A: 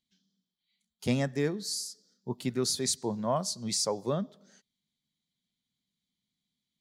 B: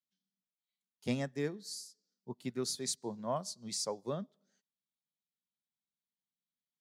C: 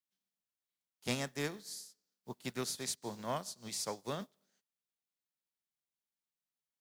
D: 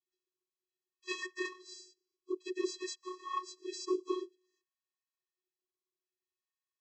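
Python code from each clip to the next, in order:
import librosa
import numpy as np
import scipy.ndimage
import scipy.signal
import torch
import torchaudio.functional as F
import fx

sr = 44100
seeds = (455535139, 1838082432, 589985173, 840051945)

y1 = scipy.signal.sosfilt(scipy.signal.butter(2, 110.0, 'highpass', fs=sr, output='sos'), x)
y1 = fx.upward_expand(y1, sr, threshold_db=-49.0, expansion=1.5)
y1 = F.gain(torch.from_numpy(y1), -5.0).numpy()
y2 = fx.spec_flatten(y1, sr, power=0.6)
y2 = F.gain(torch.from_numpy(y2), -2.0).numpy()
y3 = fx.whisperise(y2, sr, seeds[0])
y3 = fx.filter_lfo_notch(y3, sr, shape='sine', hz=0.56, low_hz=310.0, high_hz=1800.0, q=0.73)
y3 = fx.vocoder(y3, sr, bands=32, carrier='square', carrier_hz=367.0)
y3 = F.gain(torch.from_numpy(y3), 4.5).numpy()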